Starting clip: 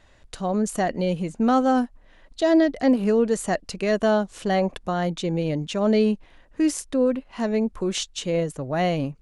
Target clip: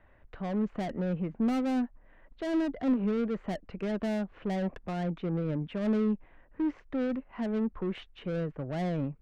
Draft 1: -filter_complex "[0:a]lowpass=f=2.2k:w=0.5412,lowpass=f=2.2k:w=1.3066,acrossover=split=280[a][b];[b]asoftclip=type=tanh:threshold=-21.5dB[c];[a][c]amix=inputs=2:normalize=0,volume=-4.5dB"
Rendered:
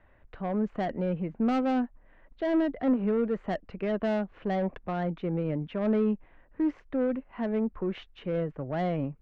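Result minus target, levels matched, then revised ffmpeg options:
soft clip: distortion -6 dB
-filter_complex "[0:a]lowpass=f=2.2k:w=0.5412,lowpass=f=2.2k:w=1.3066,acrossover=split=280[a][b];[b]asoftclip=type=tanh:threshold=-30dB[c];[a][c]amix=inputs=2:normalize=0,volume=-4.5dB"

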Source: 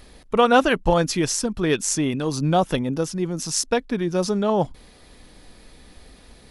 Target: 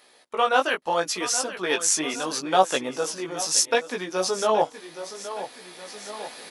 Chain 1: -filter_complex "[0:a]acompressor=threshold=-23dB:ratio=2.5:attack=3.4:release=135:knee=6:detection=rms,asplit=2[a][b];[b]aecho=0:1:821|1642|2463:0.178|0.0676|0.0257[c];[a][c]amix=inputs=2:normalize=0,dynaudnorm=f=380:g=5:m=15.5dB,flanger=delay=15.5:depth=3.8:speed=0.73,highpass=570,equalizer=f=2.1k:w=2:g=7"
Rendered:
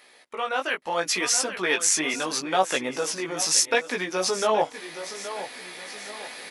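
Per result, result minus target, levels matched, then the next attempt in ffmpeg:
compressor: peak gain reduction +10 dB; 2000 Hz band +2.0 dB
-filter_complex "[0:a]asplit=2[a][b];[b]aecho=0:1:821|1642|2463:0.178|0.0676|0.0257[c];[a][c]amix=inputs=2:normalize=0,dynaudnorm=f=380:g=5:m=15.5dB,flanger=delay=15.5:depth=3.8:speed=0.73,highpass=570,equalizer=f=2.1k:w=2:g=7"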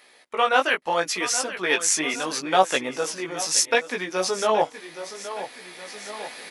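2000 Hz band +3.0 dB
-filter_complex "[0:a]asplit=2[a][b];[b]aecho=0:1:821|1642|2463:0.178|0.0676|0.0257[c];[a][c]amix=inputs=2:normalize=0,dynaudnorm=f=380:g=5:m=15.5dB,flanger=delay=15.5:depth=3.8:speed=0.73,highpass=570"

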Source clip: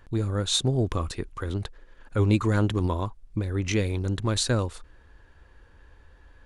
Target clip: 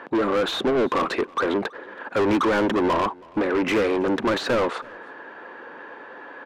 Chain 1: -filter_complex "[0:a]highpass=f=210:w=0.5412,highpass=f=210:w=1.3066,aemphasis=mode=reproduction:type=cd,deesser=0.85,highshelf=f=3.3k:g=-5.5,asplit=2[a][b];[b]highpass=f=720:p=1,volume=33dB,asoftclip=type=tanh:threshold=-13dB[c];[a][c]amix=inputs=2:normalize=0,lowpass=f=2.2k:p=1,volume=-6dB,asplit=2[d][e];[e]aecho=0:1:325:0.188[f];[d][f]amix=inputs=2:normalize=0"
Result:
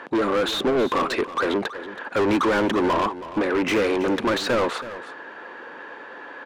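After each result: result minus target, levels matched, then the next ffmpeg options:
echo-to-direct +10.5 dB; 8000 Hz band +3.5 dB
-filter_complex "[0:a]highpass=f=210:w=0.5412,highpass=f=210:w=1.3066,aemphasis=mode=reproduction:type=cd,deesser=0.85,highshelf=f=3.3k:g=-5.5,asplit=2[a][b];[b]highpass=f=720:p=1,volume=33dB,asoftclip=type=tanh:threshold=-13dB[c];[a][c]amix=inputs=2:normalize=0,lowpass=f=2.2k:p=1,volume=-6dB,asplit=2[d][e];[e]aecho=0:1:325:0.0562[f];[d][f]amix=inputs=2:normalize=0"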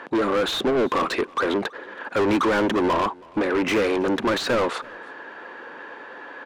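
8000 Hz band +3.5 dB
-filter_complex "[0:a]highpass=f=210:w=0.5412,highpass=f=210:w=1.3066,aemphasis=mode=reproduction:type=cd,deesser=0.85,highshelf=f=3.3k:g=-15,asplit=2[a][b];[b]highpass=f=720:p=1,volume=33dB,asoftclip=type=tanh:threshold=-13dB[c];[a][c]amix=inputs=2:normalize=0,lowpass=f=2.2k:p=1,volume=-6dB,asplit=2[d][e];[e]aecho=0:1:325:0.0562[f];[d][f]amix=inputs=2:normalize=0"

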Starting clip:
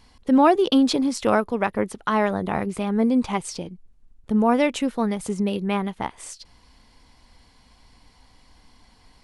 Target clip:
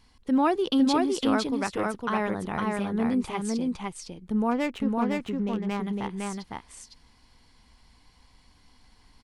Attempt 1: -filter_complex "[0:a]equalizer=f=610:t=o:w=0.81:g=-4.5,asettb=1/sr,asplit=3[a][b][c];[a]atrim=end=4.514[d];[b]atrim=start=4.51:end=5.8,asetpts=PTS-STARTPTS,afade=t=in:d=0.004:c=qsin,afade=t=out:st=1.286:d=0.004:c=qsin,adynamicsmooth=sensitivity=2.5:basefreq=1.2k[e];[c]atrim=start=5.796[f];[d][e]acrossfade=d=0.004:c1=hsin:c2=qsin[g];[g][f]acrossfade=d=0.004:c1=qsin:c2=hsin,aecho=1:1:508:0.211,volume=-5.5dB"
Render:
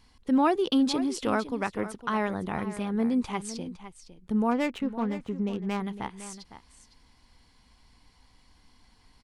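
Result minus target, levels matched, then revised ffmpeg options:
echo-to-direct -11 dB
-filter_complex "[0:a]equalizer=f=610:t=o:w=0.81:g=-4.5,asettb=1/sr,asplit=3[a][b][c];[a]atrim=end=4.514[d];[b]atrim=start=4.51:end=5.8,asetpts=PTS-STARTPTS,afade=t=in:d=0.004:c=qsin,afade=t=out:st=1.286:d=0.004:c=qsin,adynamicsmooth=sensitivity=2.5:basefreq=1.2k[e];[c]atrim=start=5.796[f];[d][e]acrossfade=d=0.004:c1=hsin:c2=qsin[g];[g][f]acrossfade=d=0.004:c1=qsin:c2=hsin,aecho=1:1:508:0.75,volume=-5.5dB"

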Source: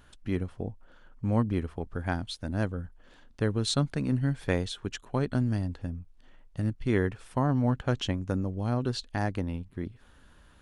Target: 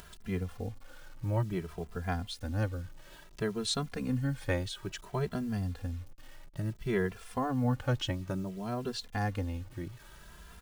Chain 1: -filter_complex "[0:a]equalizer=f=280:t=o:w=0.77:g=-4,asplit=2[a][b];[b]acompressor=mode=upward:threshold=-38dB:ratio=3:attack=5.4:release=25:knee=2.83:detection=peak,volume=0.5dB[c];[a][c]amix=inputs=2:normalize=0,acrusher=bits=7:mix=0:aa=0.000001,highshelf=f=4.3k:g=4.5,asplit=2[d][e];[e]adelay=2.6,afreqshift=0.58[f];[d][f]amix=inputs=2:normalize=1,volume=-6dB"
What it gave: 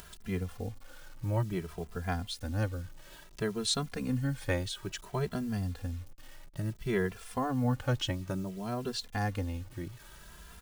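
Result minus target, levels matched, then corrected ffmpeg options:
8000 Hz band +3.0 dB
-filter_complex "[0:a]equalizer=f=280:t=o:w=0.77:g=-4,asplit=2[a][b];[b]acompressor=mode=upward:threshold=-38dB:ratio=3:attack=5.4:release=25:knee=2.83:detection=peak,volume=0.5dB[c];[a][c]amix=inputs=2:normalize=0,acrusher=bits=7:mix=0:aa=0.000001,asplit=2[d][e];[e]adelay=2.6,afreqshift=0.58[f];[d][f]amix=inputs=2:normalize=1,volume=-6dB"

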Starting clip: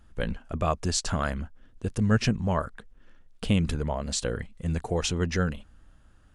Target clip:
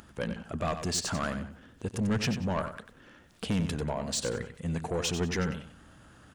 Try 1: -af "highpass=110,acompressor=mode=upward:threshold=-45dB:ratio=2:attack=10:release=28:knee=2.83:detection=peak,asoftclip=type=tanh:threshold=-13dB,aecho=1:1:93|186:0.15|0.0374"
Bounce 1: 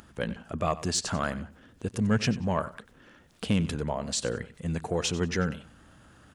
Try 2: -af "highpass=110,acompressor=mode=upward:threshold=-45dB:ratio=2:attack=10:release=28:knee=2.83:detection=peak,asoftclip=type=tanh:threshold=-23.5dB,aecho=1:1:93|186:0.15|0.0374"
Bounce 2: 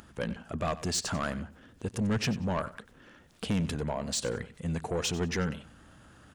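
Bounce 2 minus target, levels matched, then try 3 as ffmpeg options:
echo-to-direct -7 dB
-af "highpass=110,acompressor=mode=upward:threshold=-45dB:ratio=2:attack=10:release=28:knee=2.83:detection=peak,asoftclip=type=tanh:threshold=-23.5dB,aecho=1:1:93|186|279:0.335|0.0837|0.0209"

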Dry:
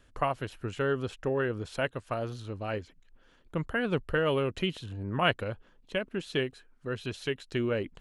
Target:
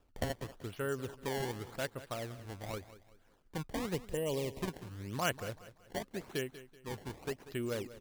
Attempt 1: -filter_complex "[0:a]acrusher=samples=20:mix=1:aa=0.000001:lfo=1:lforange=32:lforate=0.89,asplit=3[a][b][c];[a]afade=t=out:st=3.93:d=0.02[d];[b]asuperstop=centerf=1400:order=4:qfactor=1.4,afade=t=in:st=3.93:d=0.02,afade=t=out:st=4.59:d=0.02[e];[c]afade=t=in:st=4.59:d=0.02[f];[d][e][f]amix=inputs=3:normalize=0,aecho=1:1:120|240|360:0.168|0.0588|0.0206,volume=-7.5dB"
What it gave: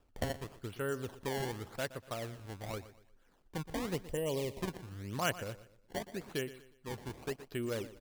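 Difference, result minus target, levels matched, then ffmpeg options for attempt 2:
echo 70 ms early
-filter_complex "[0:a]acrusher=samples=20:mix=1:aa=0.000001:lfo=1:lforange=32:lforate=0.89,asplit=3[a][b][c];[a]afade=t=out:st=3.93:d=0.02[d];[b]asuperstop=centerf=1400:order=4:qfactor=1.4,afade=t=in:st=3.93:d=0.02,afade=t=out:st=4.59:d=0.02[e];[c]afade=t=in:st=4.59:d=0.02[f];[d][e][f]amix=inputs=3:normalize=0,aecho=1:1:190|380|570:0.168|0.0588|0.0206,volume=-7.5dB"

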